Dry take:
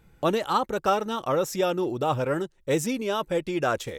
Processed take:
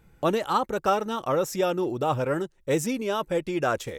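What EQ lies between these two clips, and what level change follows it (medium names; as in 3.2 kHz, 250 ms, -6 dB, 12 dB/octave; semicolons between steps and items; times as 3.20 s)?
peaking EQ 3.7 kHz -2.5 dB; 0.0 dB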